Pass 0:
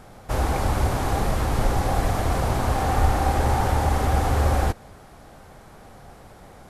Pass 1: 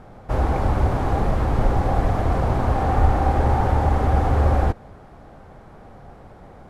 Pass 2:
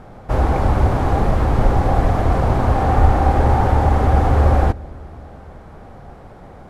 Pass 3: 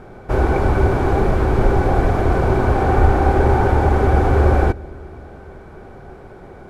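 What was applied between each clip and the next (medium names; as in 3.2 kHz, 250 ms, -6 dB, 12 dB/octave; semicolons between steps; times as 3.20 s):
low-pass 1.2 kHz 6 dB/octave; trim +3 dB
feedback echo behind a low-pass 215 ms, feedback 71%, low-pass 520 Hz, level -22 dB; trim +4 dB
small resonant body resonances 380/1500/2300 Hz, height 11 dB, ringing for 45 ms; trim -1 dB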